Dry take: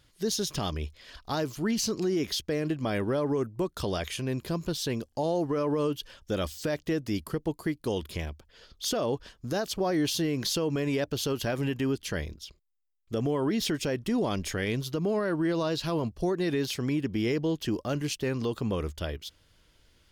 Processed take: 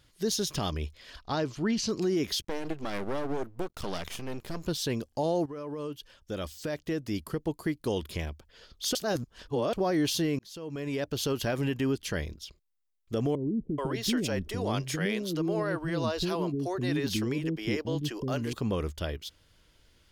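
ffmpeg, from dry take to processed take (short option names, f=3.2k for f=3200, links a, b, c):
-filter_complex "[0:a]asettb=1/sr,asplit=3[a][b][c];[a]atrim=end=1.224[d];[b]atrim=start=1.22:end=1.89,asetpts=PTS-STARTPTS,afade=t=in:d=0.004:c=qsin,afade=t=out:st=0.666:d=0.004:c=qsin,lowpass=5.5k[e];[c]atrim=start=1.886[f];[d][e]acrossfade=d=0.004:c1=hsin:c2=qsin[g];[g][f]acrossfade=d=0.004:c1=qsin:c2=hsin,asettb=1/sr,asplit=3[h][i][j];[h]atrim=end=2.424[k];[i]atrim=start=2.42:end=4.64,asetpts=PTS-STARTPTS,afade=t=in:d=0.004:c=qsin,afade=t=out:st=2.216:d=0.004:c=qsin,aeval=exprs='max(val(0),0)':c=same[l];[j]atrim=start=4.636[m];[k][l]acrossfade=d=0.004:c1=hsin:c2=qsin[n];[n][m]acrossfade=d=0.004:c1=qsin:c2=hsin,asettb=1/sr,asplit=3[o][p][q];[o]atrim=end=13.354[r];[p]atrim=start=13.35:end=18.53,asetpts=PTS-STARTPTS,afade=t=in:d=0.004:c=qsin,afade=t=out:st=5.176:d=0.004:c=qsin,acrossover=split=380[s][t];[t]adelay=430[u];[s][u]amix=inputs=2:normalize=0,atrim=end_sample=228438[v];[q]atrim=start=18.526[w];[r][v]acrossfade=d=0.004:c1=hsin:c2=qsin[x];[x][w]acrossfade=d=0.004:c1=qsin:c2=hsin,asplit=5[y][z][aa][ab][ac];[y]atrim=end=5.46,asetpts=PTS-STARTPTS,afade=t=out:st=5.456:d=0.004:c=hsin:silence=0.251189[ad];[z]atrim=start=5.46:end=8.952,asetpts=PTS-STARTPTS,afade=t=in:d=2.35:silence=0.251189[ae];[aa]atrim=start=8.948:end=9.732,asetpts=PTS-STARTPTS,areverse[af];[ab]atrim=start=9.728:end=10.39,asetpts=PTS-STARTPTS,afade=t=out:st=0.658:d=0.004:c=hsin[ag];[ac]atrim=start=10.39,asetpts=PTS-STARTPTS,afade=t=in:d=0.87[ah];[ad][ae]concat=n=2:v=0:a=1[ai];[ai][af]acrossfade=d=0.004:c1=hsin:c2=hsin[aj];[ag][ah]concat=n=2:v=0:a=1[ak];[aj][ak]acrossfade=d=0.004:c1=hsin:c2=hsin"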